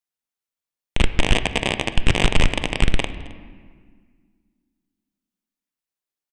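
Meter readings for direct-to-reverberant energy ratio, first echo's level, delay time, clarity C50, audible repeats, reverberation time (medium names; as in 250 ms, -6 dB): 10.0 dB, -22.5 dB, 265 ms, 11.5 dB, 1, 1.7 s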